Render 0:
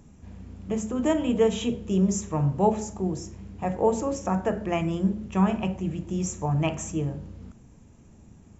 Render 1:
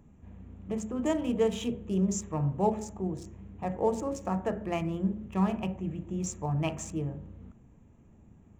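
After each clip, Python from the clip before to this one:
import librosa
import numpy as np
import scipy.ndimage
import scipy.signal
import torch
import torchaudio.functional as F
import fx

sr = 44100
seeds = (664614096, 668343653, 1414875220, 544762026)

y = fx.wiener(x, sr, points=9)
y = fx.high_shelf(y, sr, hz=5300.0, db=4.5)
y = fx.notch(y, sr, hz=1500.0, q=24.0)
y = y * 10.0 ** (-5.0 / 20.0)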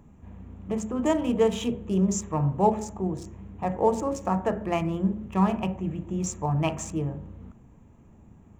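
y = fx.peak_eq(x, sr, hz=1000.0, db=4.0, octaves=0.86)
y = y * 10.0 ** (4.0 / 20.0)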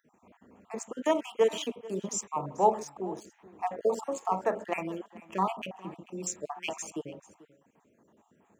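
y = fx.spec_dropout(x, sr, seeds[0], share_pct=40)
y = scipy.signal.sosfilt(scipy.signal.butter(2, 400.0, 'highpass', fs=sr, output='sos'), y)
y = y + 10.0 ** (-20.0 / 20.0) * np.pad(y, (int(439 * sr / 1000.0), 0))[:len(y)]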